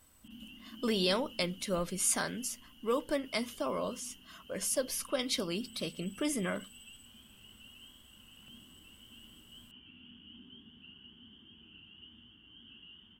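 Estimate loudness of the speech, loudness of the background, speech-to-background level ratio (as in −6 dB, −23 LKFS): −34.0 LKFS, −53.5 LKFS, 19.5 dB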